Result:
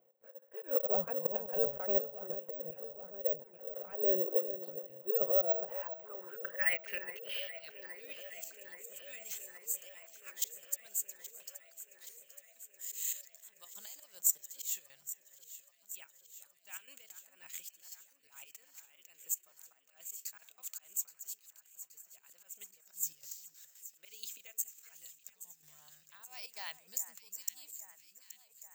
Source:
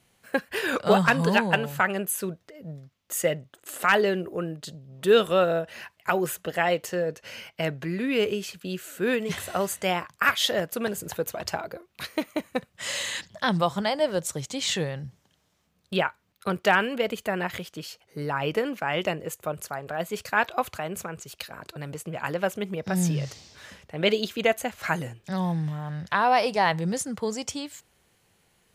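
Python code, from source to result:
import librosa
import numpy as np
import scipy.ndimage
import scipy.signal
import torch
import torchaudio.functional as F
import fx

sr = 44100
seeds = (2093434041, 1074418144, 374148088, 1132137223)

p1 = fx.step_gate(x, sr, bpm=144, pattern='x.x.x.xxxx..xx.x', floor_db=-12.0, edge_ms=4.5)
p2 = fx.rider(p1, sr, range_db=3, speed_s=2.0)
p3 = p1 + (p2 * librosa.db_to_amplitude(2.0))
p4 = fx.dynamic_eq(p3, sr, hz=2500.0, q=5.0, threshold_db=-40.0, ratio=4.0, max_db=6)
p5 = fx.auto_swell(p4, sr, attack_ms=250.0)
p6 = fx.filter_sweep_bandpass(p5, sr, from_hz=530.0, to_hz=7400.0, start_s=5.19, end_s=8.29, q=7.3)
p7 = p6 + fx.echo_alternate(p6, sr, ms=412, hz=2000.0, feedback_pct=83, wet_db=-12.5, dry=0)
y = (np.kron(scipy.signal.resample_poly(p7, 1, 2), np.eye(2)[0]) * 2)[:len(p7)]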